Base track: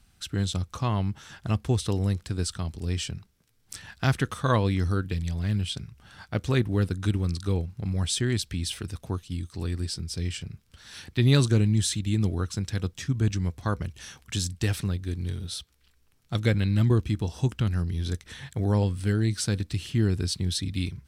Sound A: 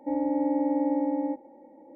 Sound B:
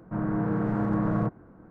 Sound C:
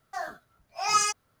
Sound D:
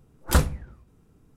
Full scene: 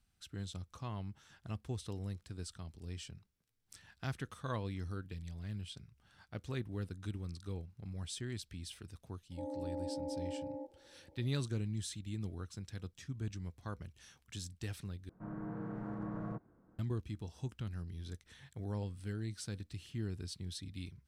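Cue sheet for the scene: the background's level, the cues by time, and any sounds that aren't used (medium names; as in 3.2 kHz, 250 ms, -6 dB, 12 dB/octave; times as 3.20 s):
base track -16 dB
9.31 s: add A -2.5 dB + ladder band-pass 520 Hz, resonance 40%
15.09 s: replace with B -15.5 dB
not used: C, D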